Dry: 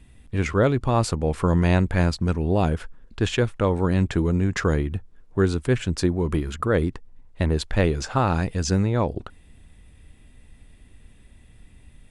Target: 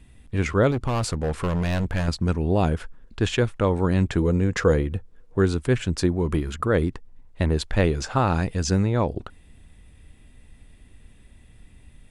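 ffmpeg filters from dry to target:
-filter_complex "[0:a]asettb=1/sr,asplit=3[a][b][c];[a]atrim=end=0.714[d];[b]atrim=start=0.71:end=2.08,asetpts=PTS-STARTPTS,afade=t=in:d=0.004:c=qsin,afade=t=out:st=1.366:d=0.004:c=qsin,volume=20.5dB,asoftclip=hard,volume=-20.5dB[e];[c]atrim=start=2.076[f];[d][e]acrossfade=d=0.004:c1=hsin:c2=qsin[g];[g][f]acrossfade=d=0.004:c1=qsin:c2=hsin,asettb=1/sr,asplit=3[h][i][j];[h]atrim=end=4.224[k];[i]atrim=start=4.22:end=5.39,asetpts=PTS-STARTPTS,afade=t=in:d=0.004:c=qsin,afade=t=out:st=1.166:d=0.004:c=qsin,equalizer=f=490:w=7.7:g=11[l];[j]atrim=start=5.386[m];[k][l]acrossfade=d=0.004:c1=hsin:c2=qsin[n];[n][m]acrossfade=d=0.004:c1=qsin:c2=hsin"

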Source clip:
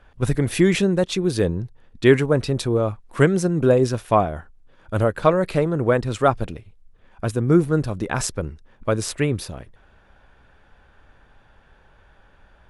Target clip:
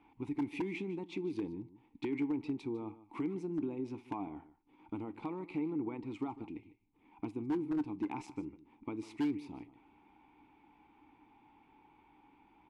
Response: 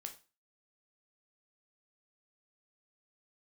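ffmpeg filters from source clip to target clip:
-filter_complex "[0:a]alimiter=limit=-11dB:level=0:latency=1:release=39,acompressor=threshold=-33dB:ratio=3,asplit=3[a][b][c];[a]bandpass=f=300:t=q:w=8,volume=0dB[d];[b]bandpass=f=870:t=q:w=8,volume=-6dB[e];[c]bandpass=f=2.24k:t=q:w=8,volume=-9dB[f];[d][e][f]amix=inputs=3:normalize=0,aecho=1:1:151:0.15,aeval=exprs='0.0178*(abs(mod(val(0)/0.0178+3,4)-2)-1)':c=same,asplit=2[g][h];[1:a]atrim=start_sample=2205,asetrate=61740,aresample=44100[i];[h][i]afir=irnorm=-1:irlink=0,volume=-1dB[j];[g][j]amix=inputs=2:normalize=0,volume=4.5dB"

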